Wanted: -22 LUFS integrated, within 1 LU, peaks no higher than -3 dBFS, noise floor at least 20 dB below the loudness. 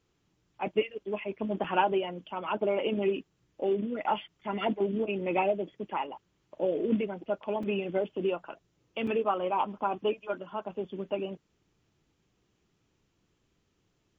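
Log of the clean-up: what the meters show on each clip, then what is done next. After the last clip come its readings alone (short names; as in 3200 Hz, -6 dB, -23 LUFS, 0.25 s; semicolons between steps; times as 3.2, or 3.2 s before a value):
dropouts 3; longest dropout 4.3 ms; loudness -31.5 LUFS; peak -14.5 dBFS; loudness target -22.0 LUFS
-> interpolate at 1.64/7.63/9.07, 4.3 ms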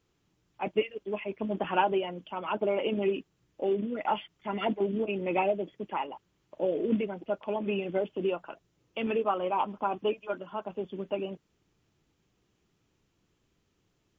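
dropouts 0; loudness -31.5 LUFS; peak -14.5 dBFS; loudness target -22.0 LUFS
-> gain +9.5 dB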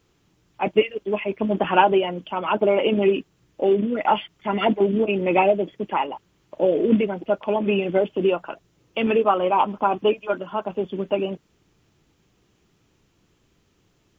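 loudness -22.0 LUFS; peak -5.0 dBFS; noise floor -65 dBFS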